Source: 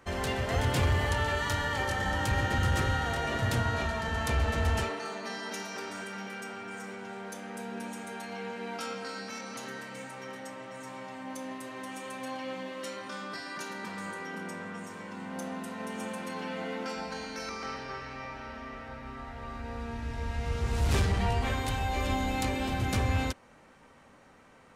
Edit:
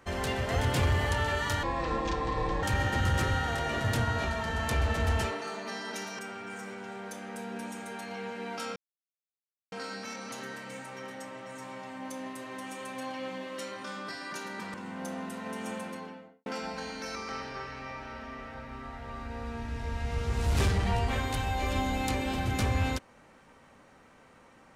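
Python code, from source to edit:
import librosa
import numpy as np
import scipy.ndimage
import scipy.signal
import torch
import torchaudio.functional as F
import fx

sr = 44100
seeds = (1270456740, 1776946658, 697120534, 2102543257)

y = fx.studio_fade_out(x, sr, start_s=16.07, length_s=0.73)
y = fx.edit(y, sr, fx.speed_span(start_s=1.63, length_s=0.58, speed=0.58),
    fx.cut(start_s=5.77, length_s=0.63),
    fx.insert_silence(at_s=8.97, length_s=0.96),
    fx.cut(start_s=13.99, length_s=1.09), tone=tone)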